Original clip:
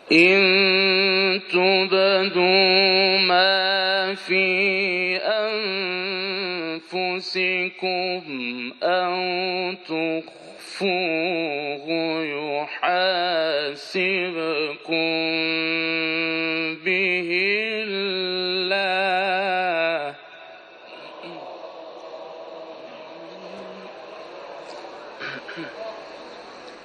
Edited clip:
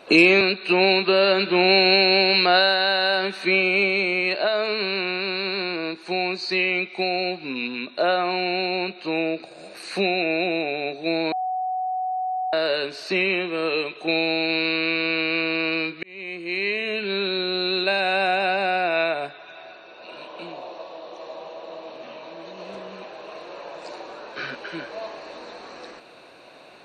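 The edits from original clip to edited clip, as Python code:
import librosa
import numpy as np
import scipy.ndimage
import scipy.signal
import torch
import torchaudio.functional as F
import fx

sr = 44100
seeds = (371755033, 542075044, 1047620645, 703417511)

y = fx.edit(x, sr, fx.cut(start_s=0.41, length_s=0.84),
    fx.bleep(start_s=12.16, length_s=1.21, hz=744.0, db=-23.0),
    fx.fade_in_span(start_s=16.87, length_s=0.96), tone=tone)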